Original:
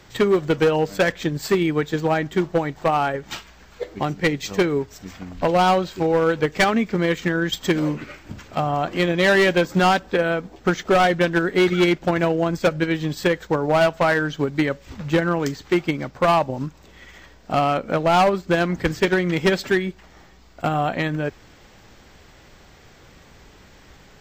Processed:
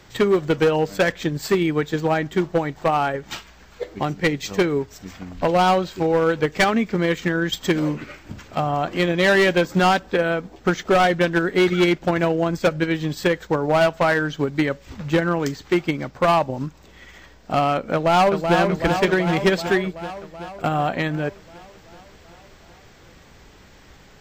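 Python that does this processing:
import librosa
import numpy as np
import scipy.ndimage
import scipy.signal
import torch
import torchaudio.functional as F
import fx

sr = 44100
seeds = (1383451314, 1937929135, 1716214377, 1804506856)

y = fx.echo_throw(x, sr, start_s=17.93, length_s=0.65, ms=380, feedback_pct=70, wet_db=-5.5)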